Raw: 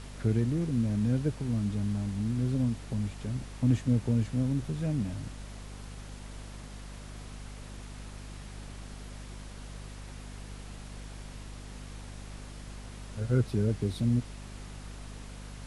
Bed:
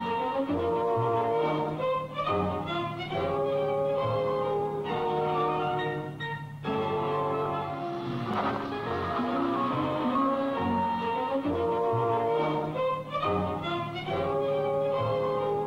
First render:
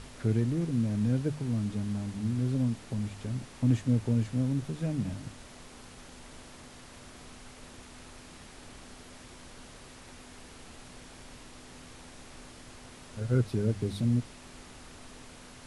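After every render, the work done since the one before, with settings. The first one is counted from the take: de-hum 50 Hz, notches 4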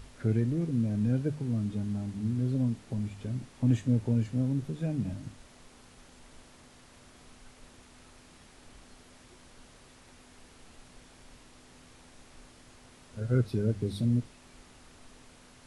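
noise print and reduce 6 dB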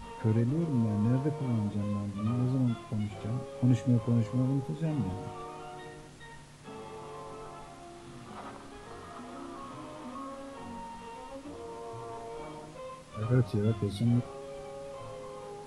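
add bed -15.5 dB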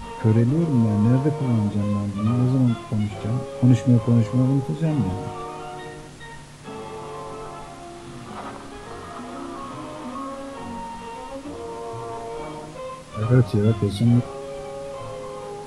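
gain +9.5 dB

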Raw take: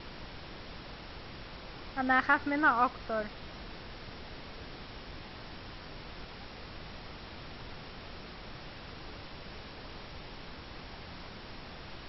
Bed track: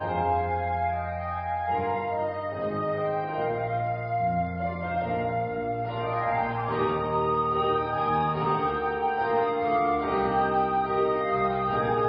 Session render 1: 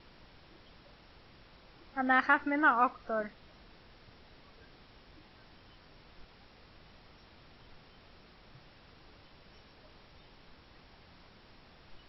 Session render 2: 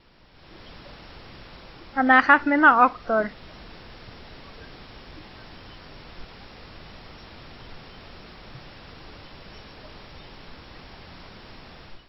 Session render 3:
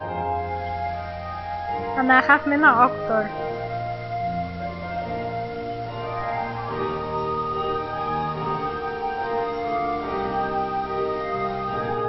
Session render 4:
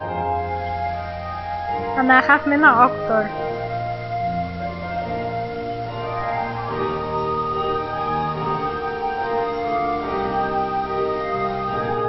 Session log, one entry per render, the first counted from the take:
noise print and reduce 12 dB
AGC gain up to 13.5 dB
add bed track -0.5 dB
gain +3 dB; limiter -1 dBFS, peak gain reduction 2.5 dB

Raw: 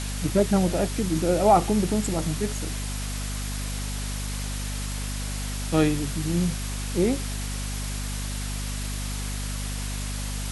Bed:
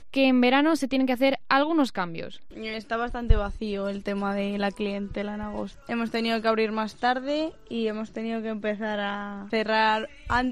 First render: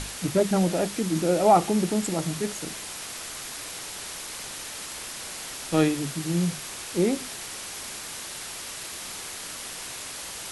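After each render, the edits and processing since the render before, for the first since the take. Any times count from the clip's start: notches 50/100/150/200/250 Hz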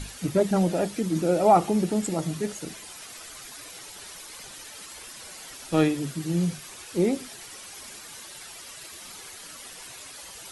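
denoiser 10 dB, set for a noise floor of -38 dBFS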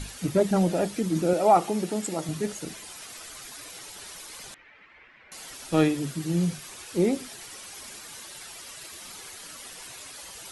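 1.33–2.29 HPF 320 Hz 6 dB/oct; 4.54–5.32 ladder low-pass 2400 Hz, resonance 60%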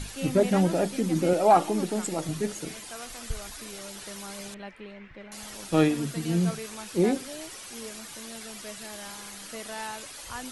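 add bed -15 dB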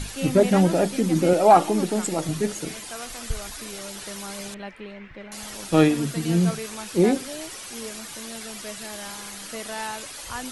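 gain +4.5 dB

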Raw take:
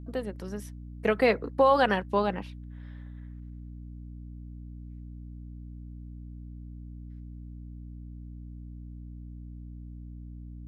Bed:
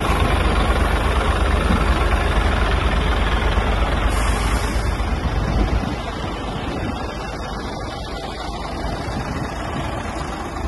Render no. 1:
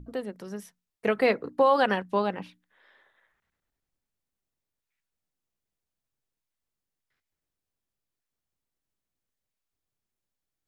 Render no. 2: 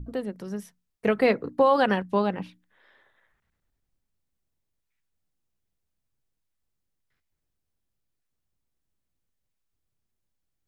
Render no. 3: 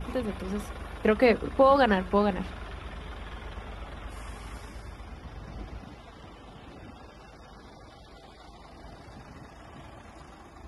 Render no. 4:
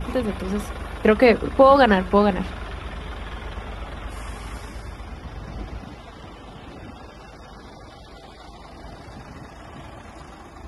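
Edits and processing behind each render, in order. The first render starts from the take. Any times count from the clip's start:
notches 60/120/180/240/300 Hz
low shelf 220 Hz +9.5 dB
add bed -22 dB
gain +7 dB; limiter -3 dBFS, peak gain reduction 1 dB

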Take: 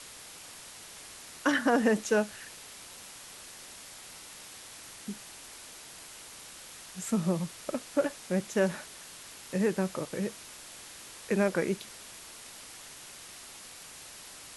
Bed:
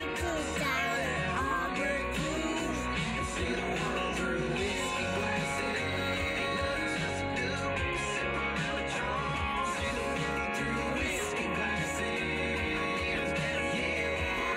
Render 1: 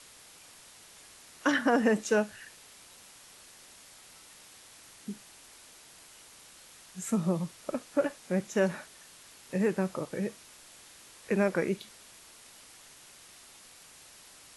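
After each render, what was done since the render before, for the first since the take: noise print and reduce 6 dB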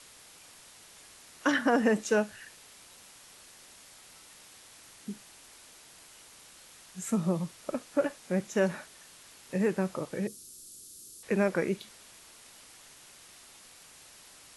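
10.27–11.23 EQ curve 390 Hz 0 dB, 830 Hz -26 dB, 1300 Hz -14 dB, 1900 Hz -24 dB, 4400 Hz 0 dB, 12000 Hz +9 dB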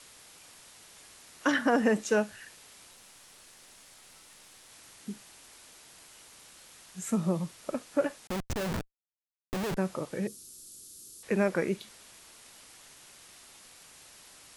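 2.91–4.69 half-wave gain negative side -3 dB; 6.06–6.74 block floating point 7-bit; 8.27–9.77 Schmitt trigger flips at -36.5 dBFS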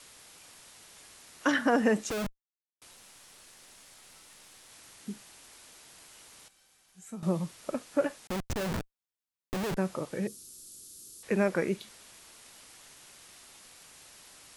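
2.1–2.82 Schmitt trigger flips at -37 dBFS; 6.48–7.23 resonator 780 Hz, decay 0.2 s, mix 80%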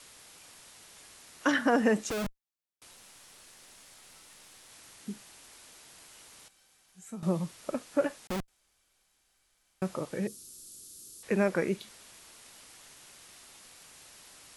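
8.48–9.82 room tone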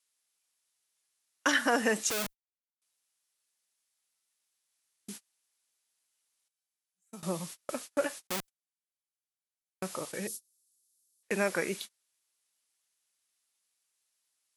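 gate -41 dBFS, range -34 dB; tilt +3 dB/oct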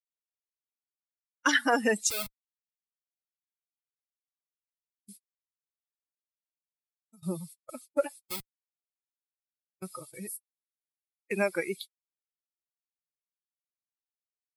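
per-bin expansion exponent 2; AGC gain up to 5 dB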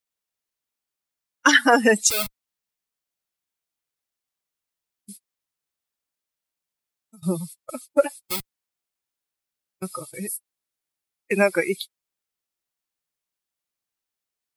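gain +9 dB

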